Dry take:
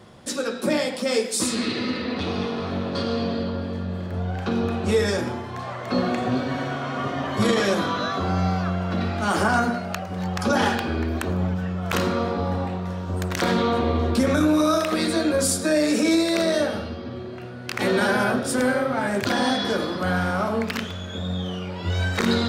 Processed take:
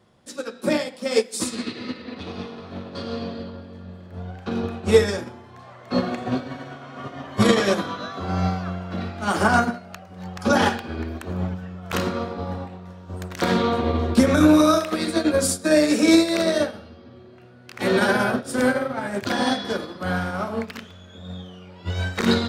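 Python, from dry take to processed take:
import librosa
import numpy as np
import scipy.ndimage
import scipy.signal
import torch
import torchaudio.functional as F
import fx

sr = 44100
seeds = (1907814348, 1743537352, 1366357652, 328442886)

y = fx.upward_expand(x, sr, threshold_db=-29.0, expansion=2.5)
y = F.gain(torch.from_numpy(y), 7.5).numpy()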